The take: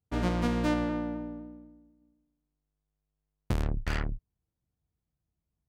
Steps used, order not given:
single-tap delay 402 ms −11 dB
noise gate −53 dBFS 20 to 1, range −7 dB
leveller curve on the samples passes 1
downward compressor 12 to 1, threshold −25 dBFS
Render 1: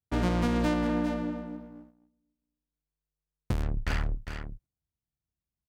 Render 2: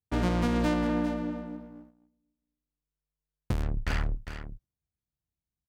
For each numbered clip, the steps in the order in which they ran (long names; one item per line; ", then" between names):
single-tap delay, then downward compressor, then leveller curve on the samples, then noise gate
downward compressor, then single-tap delay, then leveller curve on the samples, then noise gate